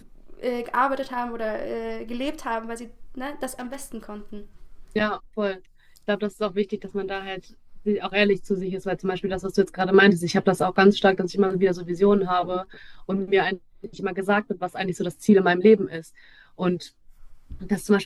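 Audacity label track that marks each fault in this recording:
3.480000	3.850000	clipping −28.5 dBFS

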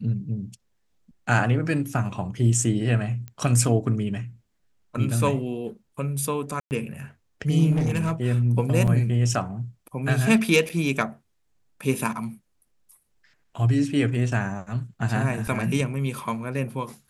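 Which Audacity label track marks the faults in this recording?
3.280000	3.280000	click −23 dBFS
6.600000	6.710000	drop-out 109 ms
7.710000	8.140000	clipping −19.5 dBFS
8.870000	8.880000	drop-out 6.2 ms
10.690000	10.700000	drop-out 7.2 ms

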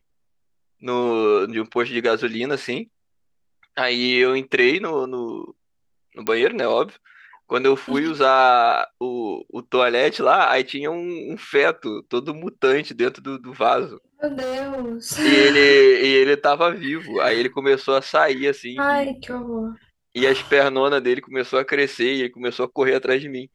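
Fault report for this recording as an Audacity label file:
6.270000	6.270000	click −9 dBFS
14.270000	14.960000	clipping −23.5 dBFS

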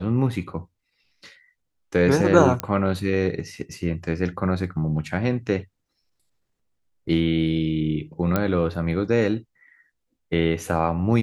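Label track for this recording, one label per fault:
2.600000	2.600000	click −9 dBFS
8.360000	8.360000	click −8 dBFS

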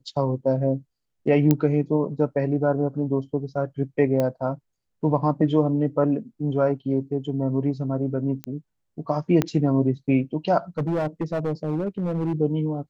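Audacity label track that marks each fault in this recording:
1.510000	1.510000	click −6 dBFS
4.200000	4.200000	click −12 dBFS
8.440000	8.440000	click −16 dBFS
9.420000	9.420000	click −8 dBFS
10.780000	12.330000	clipping −20.5 dBFS

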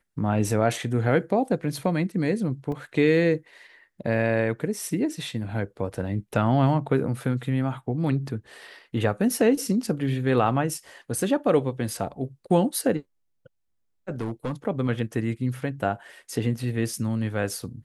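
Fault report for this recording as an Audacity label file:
2.720000	2.720000	drop-out 2.2 ms
14.210000	14.530000	clipping −24 dBFS

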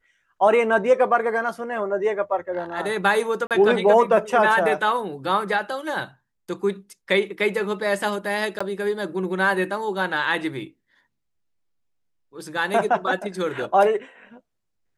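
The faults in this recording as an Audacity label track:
3.470000	3.510000	drop-out 37 ms
8.590000	8.610000	drop-out 15 ms

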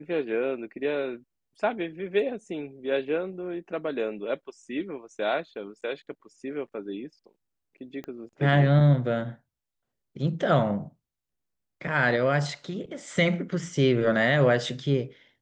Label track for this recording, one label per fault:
8.040000	8.040000	click −25 dBFS

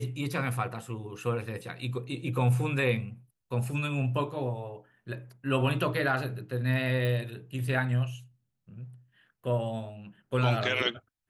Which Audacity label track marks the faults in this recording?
7.050000	7.050000	click

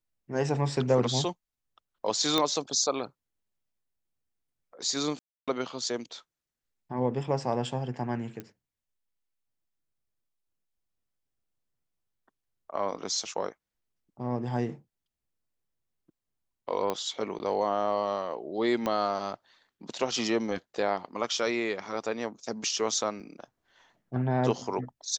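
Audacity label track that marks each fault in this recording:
2.380000	2.380000	click −10 dBFS
5.190000	5.480000	drop-out 286 ms
8.400000	8.400000	click −24 dBFS
16.900000	16.900000	click −16 dBFS
18.860000	18.860000	click −16 dBFS
23.200000	23.200000	drop-out 3 ms

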